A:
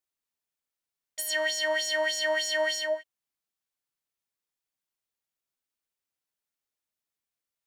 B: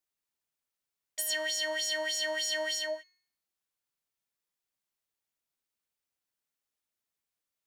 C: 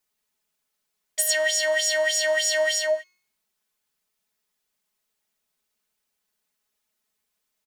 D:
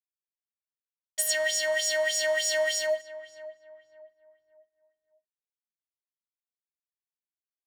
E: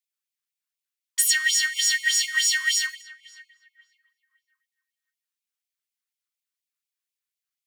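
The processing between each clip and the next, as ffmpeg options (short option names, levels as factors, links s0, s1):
-filter_complex "[0:a]bandreject=f=363:t=h:w=4,bandreject=f=726:t=h:w=4,bandreject=f=1089:t=h:w=4,bandreject=f=1452:t=h:w=4,bandreject=f=1815:t=h:w=4,bandreject=f=2178:t=h:w=4,bandreject=f=2541:t=h:w=4,bandreject=f=2904:t=h:w=4,bandreject=f=3267:t=h:w=4,bandreject=f=3630:t=h:w=4,bandreject=f=3993:t=h:w=4,bandreject=f=4356:t=h:w=4,bandreject=f=4719:t=h:w=4,bandreject=f=5082:t=h:w=4,bandreject=f=5445:t=h:w=4,bandreject=f=5808:t=h:w=4,bandreject=f=6171:t=h:w=4,bandreject=f=6534:t=h:w=4,bandreject=f=6897:t=h:w=4,acrossover=split=310|3000[s0][s1][s2];[s1]acompressor=threshold=0.0112:ratio=2[s3];[s0][s3][s2]amix=inputs=3:normalize=0"
-af "aecho=1:1:4.7:0.93,volume=2.24"
-filter_complex "[0:a]aeval=exprs='sgn(val(0))*max(abs(val(0))-0.0075,0)':c=same,asplit=2[s0][s1];[s1]adelay=559,lowpass=f=1300:p=1,volume=0.188,asplit=2[s2][s3];[s3]adelay=559,lowpass=f=1300:p=1,volume=0.4,asplit=2[s4][s5];[s5]adelay=559,lowpass=f=1300:p=1,volume=0.4,asplit=2[s6][s7];[s7]adelay=559,lowpass=f=1300:p=1,volume=0.4[s8];[s0][s2][s4][s6][s8]amix=inputs=5:normalize=0,volume=0.668"
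-af "afftfilt=real='re*gte(b*sr/1024,980*pow(2100/980,0.5+0.5*sin(2*PI*4.1*pts/sr)))':imag='im*gte(b*sr/1024,980*pow(2100/980,0.5+0.5*sin(2*PI*4.1*pts/sr)))':win_size=1024:overlap=0.75,volume=2.24"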